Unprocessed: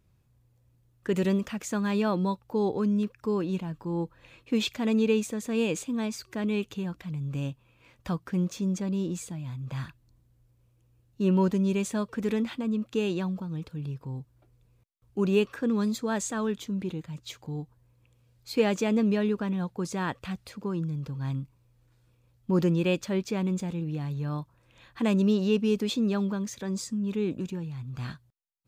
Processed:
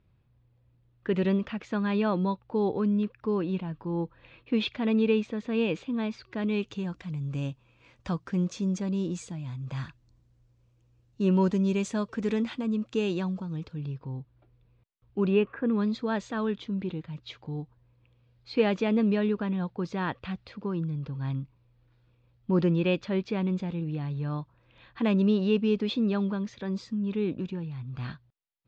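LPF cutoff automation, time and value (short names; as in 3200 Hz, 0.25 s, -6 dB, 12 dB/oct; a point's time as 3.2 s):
LPF 24 dB/oct
6.23 s 3900 Hz
6.85 s 7000 Hz
13.49 s 7000 Hz
14.14 s 4000 Hz
15.27 s 4000 Hz
15.5 s 2000 Hz
15.94 s 4200 Hz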